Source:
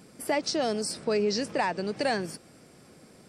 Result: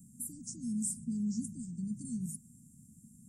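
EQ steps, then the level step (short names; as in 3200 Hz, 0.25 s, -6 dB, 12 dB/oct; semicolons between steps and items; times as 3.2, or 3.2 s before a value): Chebyshev band-stop 240–6800 Hz, order 5; notches 50/100/150/200 Hz; +1.0 dB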